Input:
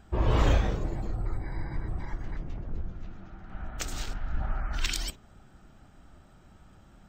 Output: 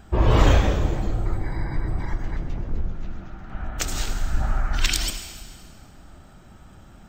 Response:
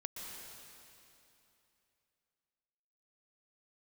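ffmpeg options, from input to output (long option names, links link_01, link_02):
-filter_complex "[0:a]asplit=2[link_01][link_02];[1:a]atrim=start_sample=2205,asetrate=70560,aresample=44100,highshelf=frequency=6700:gain=9.5[link_03];[link_02][link_03]afir=irnorm=-1:irlink=0,volume=0dB[link_04];[link_01][link_04]amix=inputs=2:normalize=0,volume=4.5dB"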